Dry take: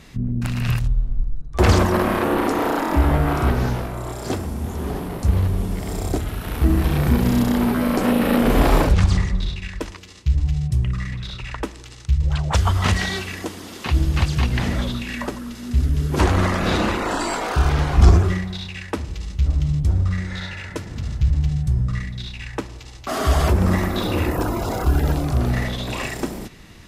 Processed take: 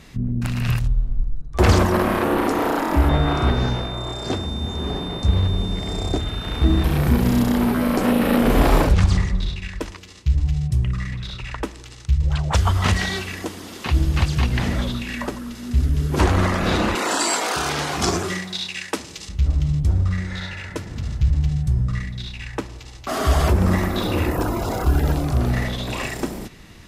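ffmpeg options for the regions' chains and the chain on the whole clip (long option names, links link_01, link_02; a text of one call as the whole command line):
ffmpeg -i in.wav -filter_complex "[0:a]asettb=1/sr,asplit=3[link_01][link_02][link_03];[link_01]atrim=end=3.094[link_04];[link_02]atrim=start=3.09:end=6.84,asetpts=PTS-STARTPTS,afade=type=in:duration=0.004:curve=qsin,afade=type=out:start_time=3.746:duration=0.004:curve=qsin,lowpass=6900,aeval=exprs='val(0)+0.0224*sin(2*PI*3600*n/s)':channel_layout=same[link_05];[link_03]atrim=start=6.836[link_06];[link_04][link_05]acrossfade=duration=0.004:curve1=hsin:curve2=qsin[link_07];[link_07][link_06]acrossfade=duration=0.004:curve1=qsin:curve2=hsin,asettb=1/sr,asplit=3[link_08][link_09][link_10];[link_08]atrim=end=16.954[link_11];[link_09]atrim=start=16.95:end=19.29,asetpts=PTS-STARTPTS,afade=type=in:duration=0.004:curve=qsin,afade=type=out:start_time=2.336:duration=0.004:curve=qsin,highpass=220,equalizer=frequency=8000:width_type=o:width=2.6:gain=10.5[link_12];[link_10]atrim=start=19.286[link_13];[link_11][link_12]acrossfade=duration=0.004:curve1=hsin:curve2=qsin[link_14];[link_14][link_13]acrossfade=duration=0.004:curve1=qsin:curve2=hsin" out.wav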